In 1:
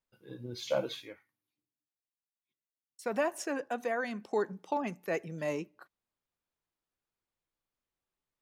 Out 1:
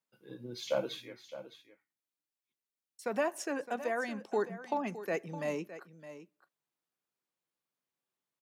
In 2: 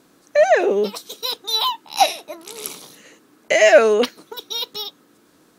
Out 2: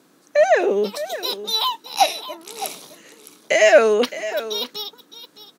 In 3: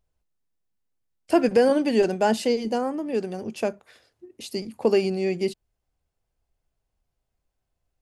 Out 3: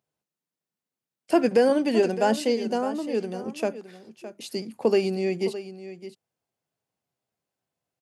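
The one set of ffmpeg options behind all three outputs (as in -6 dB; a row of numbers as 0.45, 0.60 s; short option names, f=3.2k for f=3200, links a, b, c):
-filter_complex "[0:a]highpass=f=130:w=0.5412,highpass=f=130:w=1.3066,asplit=2[a][b];[b]aecho=0:1:613:0.211[c];[a][c]amix=inputs=2:normalize=0,volume=-1dB"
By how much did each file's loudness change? -1.0, -1.5, -1.0 LU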